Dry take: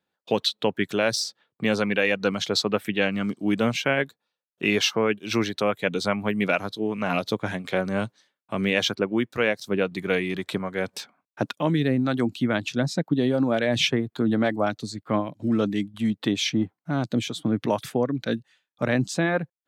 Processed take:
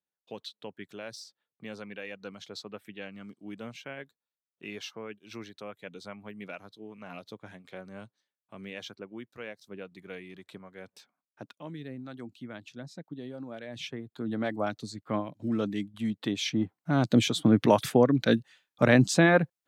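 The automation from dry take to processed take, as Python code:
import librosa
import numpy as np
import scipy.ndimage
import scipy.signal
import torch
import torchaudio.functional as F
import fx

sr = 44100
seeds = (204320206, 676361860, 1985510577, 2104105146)

y = fx.gain(x, sr, db=fx.line((13.73, -18.5), (14.57, -6.5), (16.41, -6.5), (17.16, 3.0)))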